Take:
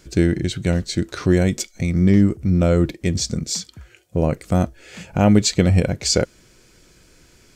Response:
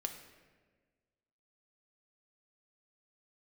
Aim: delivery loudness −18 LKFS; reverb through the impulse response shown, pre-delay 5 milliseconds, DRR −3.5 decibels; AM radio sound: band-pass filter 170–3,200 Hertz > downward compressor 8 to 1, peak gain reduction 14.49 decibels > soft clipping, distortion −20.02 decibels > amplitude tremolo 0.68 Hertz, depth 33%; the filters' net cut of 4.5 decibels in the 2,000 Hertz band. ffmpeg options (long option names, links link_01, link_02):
-filter_complex "[0:a]equalizer=frequency=2000:width_type=o:gain=-5,asplit=2[link_01][link_02];[1:a]atrim=start_sample=2205,adelay=5[link_03];[link_02][link_03]afir=irnorm=-1:irlink=0,volume=4dB[link_04];[link_01][link_04]amix=inputs=2:normalize=0,highpass=170,lowpass=3200,acompressor=threshold=-18dB:ratio=8,asoftclip=threshold=-13dB,tremolo=f=0.68:d=0.33,volume=8.5dB"